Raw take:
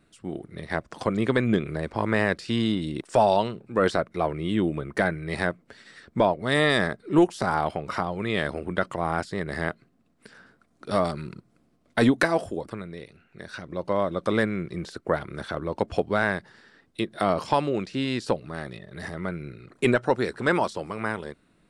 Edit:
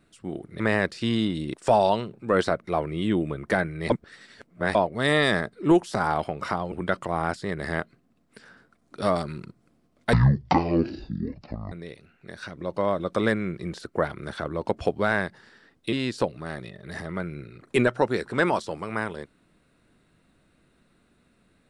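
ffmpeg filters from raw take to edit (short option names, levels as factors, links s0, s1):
-filter_complex "[0:a]asplit=8[s0][s1][s2][s3][s4][s5][s6][s7];[s0]atrim=end=0.602[s8];[s1]atrim=start=2.068:end=5.372[s9];[s2]atrim=start=5.368:end=6.222,asetpts=PTS-STARTPTS,areverse[s10];[s3]atrim=start=6.218:end=8.192[s11];[s4]atrim=start=8.608:end=12.024[s12];[s5]atrim=start=12.02:end=12.83,asetpts=PTS-STARTPTS,asetrate=22491,aresample=44100,atrim=end_sample=70041,asetpts=PTS-STARTPTS[s13];[s6]atrim=start=12.826:end=17.042[s14];[s7]atrim=start=18.008[s15];[s8][s9]acrossfade=d=0.004:c1=hsin:c2=hsin[s16];[s16][s10]acrossfade=d=0.004:c1=hsin:c2=hsin[s17];[s17][s11]acrossfade=d=0.004:c1=hsin:c2=hsin[s18];[s18][s12]acrossfade=d=0.004:c1=hsin:c2=hsin[s19];[s19][s13]acrossfade=d=0.004:c1=hsin:c2=hsin[s20];[s20][s14]acrossfade=d=0.004:c1=hsin:c2=hsin[s21];[s21][s15]acrossfade=d=0.004:c1=hsin:c2=hsin"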